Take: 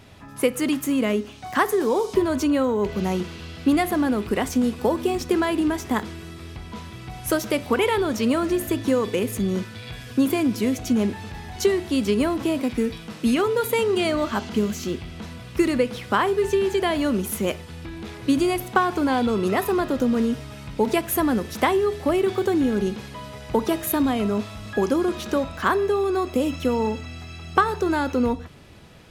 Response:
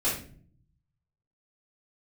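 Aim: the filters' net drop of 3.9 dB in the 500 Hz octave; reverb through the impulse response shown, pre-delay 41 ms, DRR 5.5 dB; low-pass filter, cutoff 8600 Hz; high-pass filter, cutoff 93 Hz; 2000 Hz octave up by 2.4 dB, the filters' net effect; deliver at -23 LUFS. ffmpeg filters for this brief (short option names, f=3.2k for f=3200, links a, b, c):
-filter_complex "[0:a]highpass=93,lowpass=8.6k,equalizer=f=500:t=o:g=-5.5,equalizer=f=2k:t=o:g=3.5,asplit=2[a][b];[1:a]atrim=start_sample=2205,adelay=41[c];[b][c]afir=irnorm=-1:irlink=0,volume=-15dB[d];[a][d]amix=inputs=2:normalize=0,volume=0.5dB"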